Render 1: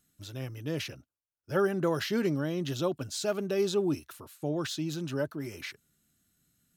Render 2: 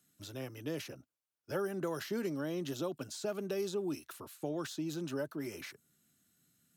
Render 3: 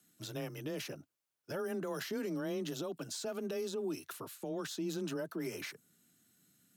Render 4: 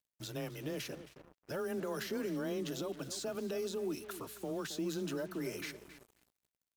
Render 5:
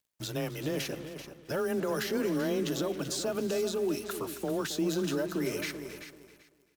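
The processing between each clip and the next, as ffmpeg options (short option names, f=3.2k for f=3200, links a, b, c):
-filter_complex "[0:a]highpass=120,acrossover=split=200|1400|6000[a][b][c][d];[a]acompressor=threshold=-51dB:ratio=4[e];[b]acompressor=threshold=-35dB:ratio=4[f];[c]acompressor=threshold=-51dB:ratio=4[g];[d]acompressor=threshold=-49dB:ratio=4[h];[e][f][g][h]amix=inputs=4:normalize=0"
-af "alimiter=level_in=9.5dB:limit=-24dB:level=0:latency=1:release=83,volume=-9.5dB,afreqshift=19,volume=3dB"
-filter_complex "[0:a]asplit=2[a][b];[b]adelay=270,lowpass=f=2.7k:p=1,volume=-12.5dB,asplit=2[c][d];[d]adelay=270,lowpass=f=2.7k:p=1,volume=0.35,asplit=2[e][f];[f]adelay=270,lowpass=f=2.7k:p=1,volume=0.35,asplit=2[g][h];[h]adelay=270,lowpass=f=2.7k:p=1,volume=0.35[i];[a][c][e][g][i]amix=inputs=5:normalize=0,aeval=exprs='val(0)+0.000398*(sin(2*PI*60*n/s)+sin(2*PI*2*60*n/s)/2+sin(2*PI*3*60*n/s)/3+sin(2*PI*4*60*n/s)/4+sin(2*PI*5*60*n/s)/5)':c=same,acrusher=bits=8:mix=0:aa=0.5"
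-af "aecho=1:1:386|772|1158:0.282|0.0535|0.0102,volume=7dB"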